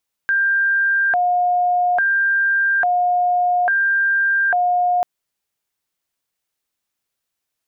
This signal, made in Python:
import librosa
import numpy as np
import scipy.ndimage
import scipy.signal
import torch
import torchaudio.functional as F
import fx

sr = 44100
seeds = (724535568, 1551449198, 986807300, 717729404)

y = fx.siren(sr, length_s=4.74, kind='hi-lo', low_hz=715.0, high_hz=1590.0, per_s=0.59, wave='sine', level_db=-14.0)